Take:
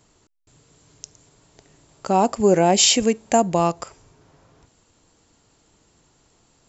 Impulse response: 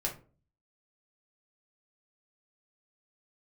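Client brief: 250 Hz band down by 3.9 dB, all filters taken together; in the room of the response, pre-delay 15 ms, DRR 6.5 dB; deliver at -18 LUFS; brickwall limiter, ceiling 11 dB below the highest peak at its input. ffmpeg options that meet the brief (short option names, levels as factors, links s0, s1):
-filter_complex "[0:a]equalizer=f=250:t=o:g=-5.5,alimiter=limit=0.178:level=0:latency=1,asplit=2[s0][s1];[1:a]atrim=start_sample=2205,adelay=15[s2];[s1][s2]afir=irnorm=-1:irlink=0,volume=0.316[s3];[s0][s3]amix=inputs=2:normalize=0,volume=2.11"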